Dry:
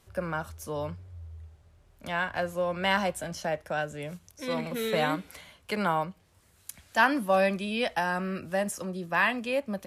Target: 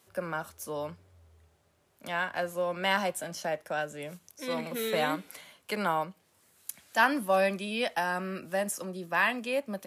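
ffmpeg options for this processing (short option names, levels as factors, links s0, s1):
-af "highpass=190,highshelf=f=10000:g=8,volume=0.841"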